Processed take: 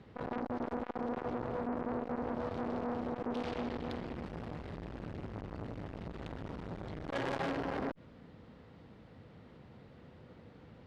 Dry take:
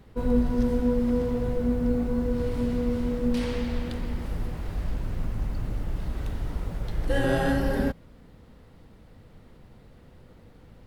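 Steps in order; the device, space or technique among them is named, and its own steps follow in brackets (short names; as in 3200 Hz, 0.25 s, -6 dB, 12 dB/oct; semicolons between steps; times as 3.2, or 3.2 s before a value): valve radio (BPF 98–4200 Hz; tube stage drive 30 dB, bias 0.6; core saturation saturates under 650 Hz); gain +2 dB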